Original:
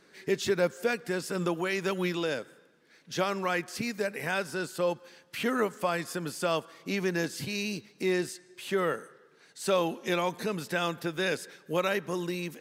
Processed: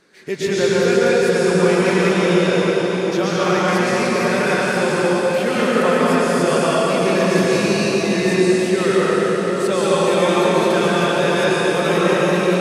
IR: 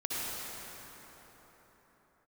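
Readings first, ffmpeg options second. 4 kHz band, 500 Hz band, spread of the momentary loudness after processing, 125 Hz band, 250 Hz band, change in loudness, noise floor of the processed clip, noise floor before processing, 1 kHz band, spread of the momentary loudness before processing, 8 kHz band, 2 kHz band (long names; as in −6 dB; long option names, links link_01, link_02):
+12.5 dB, +15.5 dB, 3 LU, +15.5 dB, +15.5 dB, +14.5 dB, −21 dBFS, −61 dBFS, +14.0 dB, 7 LU, +13.0 dB, +13.0 dB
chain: -filter_complex "[1:a]atrim=start_sample=2205,asetrate=22932,aresample=44100[link_01];[0:a][link_01]afir=irnorm=-1:irlink=0,volume=2.5dB"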